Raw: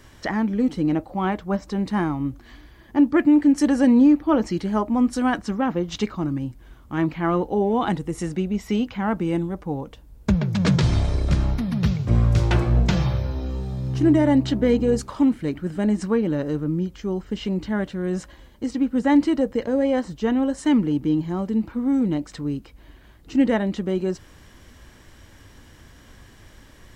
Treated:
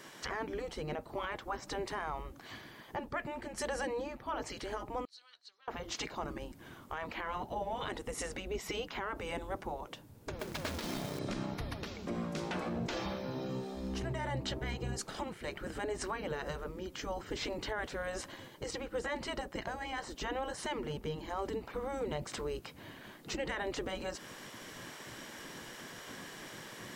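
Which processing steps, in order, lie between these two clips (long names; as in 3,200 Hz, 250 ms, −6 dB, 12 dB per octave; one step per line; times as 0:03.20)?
downward compressor 2 to 1, threshold −28 dBFS, peak gain reduction 9 dB
gate on every frequency bin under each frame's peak −10 dB weak
0:05.05–0:05.68: resonant band-pass 4,200 Hz, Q 11
0:10.39–0:11.19: log-companded quantiser 4 bits
speech leveller within 4 dB 2 s
brickwall limiter −29 dBFS, peak gain reduction 10.5 dB
level +1.5 dB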